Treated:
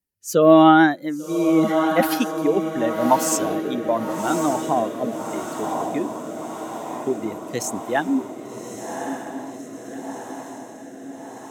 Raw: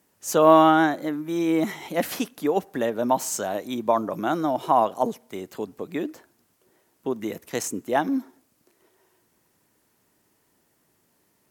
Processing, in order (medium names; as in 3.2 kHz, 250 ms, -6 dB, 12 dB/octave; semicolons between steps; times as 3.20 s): expander on every frequency bin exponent 1.5; echo that smears into a reverb 1140 ms, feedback 66%, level -8 dB; rotary cabinet horn 0.85 Hz; trim +7.5 dB